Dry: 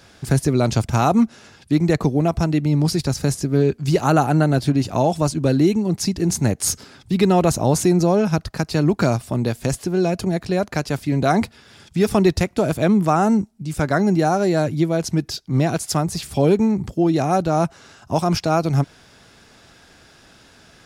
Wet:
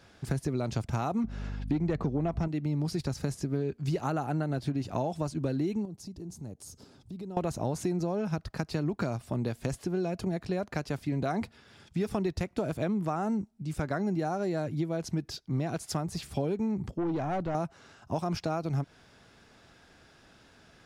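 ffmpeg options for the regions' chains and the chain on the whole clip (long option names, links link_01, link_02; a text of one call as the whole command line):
ffmpeg -i in.wav -filter_complex "[0:a]asettb=1/sr,asplit=3[link_01][link_02][link_03];[link_01]atrim=end=1.244[link_04];[link_02]atrim=start=1.24:end=2.48,asetpts=PTS-STARTPTS,afade=type=in:duration=0.004:curve=qsin,afade=type=out:start_time=1.236:duration=0.004:curve=qsin,aemphasis=mode=reproduction:type=50kf,acontrast=90,aeval=exprs='val(0)+0.0447*(sin(2*PI*50*n/s)+sin(2*PI*2*50*n/s)/2+sin(2*PI*3*50*n/s)/3+sin(2*PI*4*50*n/s)/4+sin(2*PI*5*50*n/s)/5)':channel_layout=same[link_05];[link_03]atrim=start=2.476[link_06];[link_04][link_05]acrossfade=duration=0.004:curve1=hsin:curve2=qsin[link_07];[link_07][link_06]acrossfade=duration=0.004:curve1=qsin:curve2=hsin,asettb=1/sr,asplit=3[link_08][link_09][link_10];[link_08]atrim=end=5.854[link_11];[link_09]atrim=start=5.85:end=7.37,asetpts=PTS-STARTPTS,afade=type=in:duration=0.004:curve=qsin,afade=type=out:start_time=1.516:duration=0.004:curve=qsin,equalizer=frequency=1900:width=0.82:gain=-13,acompressor=threshold=-35dB:ratio=3:attack=3.2:release=140:knee=1:detection=peak[link_12];[link_10]atrim=start=7.366[link_13];[link_11][link_12]acrossfade=duration=0.004:curve1=hsin:curve2=qsin[link_14];[link_14][link_13]acrossfade=duration=0.004:curve1=qsin:curve2=hsin,asettb=1/sr,asplit=3[link_15][link_16][link_17];[link_15]atrim=end=16.914[link_18];[link_16]atrim=start=16.91:end=17.55,asetpts=PTS-STARTPTS,afade=type=in:duration=0.004:curve=qsin,afade=type=out:start_time=0.636:duration=0.004:curve=qsin,lowpass=frequency=2300:poles=1,aeval=exprs='(tanh(7.08*val(0)+0.15)-tanh(0.15))/7.08':channel_layout=same[link_19];[link_17]atrim=start=17.546[link_20];[link_18][link_19]acrossfade=duration=0.004:curve1=hsin:curve2=qsin[link_21];[link_21][link_20]acrossfade=duration=0.004:curve1=qsin:curve2=hsin,highshelf=frequency=4200:gain=-7,acompressor=threshold=-19dB:ratio=6,volume=-7.5dB" out.wav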